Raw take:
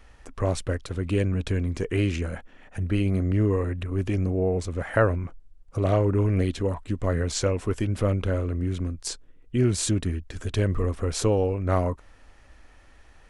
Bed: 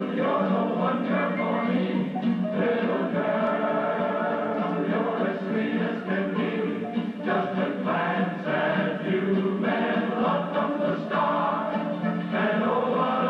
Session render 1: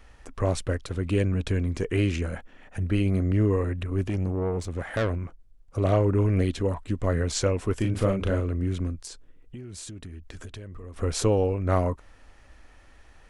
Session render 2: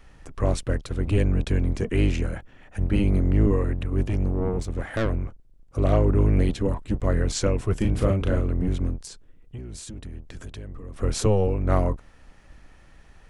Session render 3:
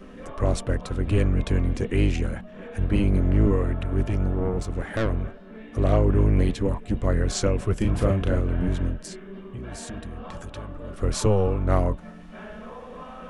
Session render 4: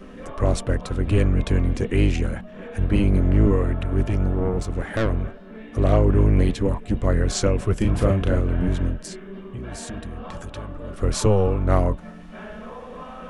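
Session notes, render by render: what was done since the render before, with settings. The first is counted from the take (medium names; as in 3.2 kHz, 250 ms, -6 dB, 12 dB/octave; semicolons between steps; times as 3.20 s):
4.04–5.78 s: valve stage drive 20 dB, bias 0.45; 7.75–8.40 s: doubling 36 ms -4.5 dB; 8.96–10.96 s: compression 16:1, threshold -36 dBFS
octave divider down 1 oct, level +2 dB
add bed -16.5 dB
trim +2.5 dB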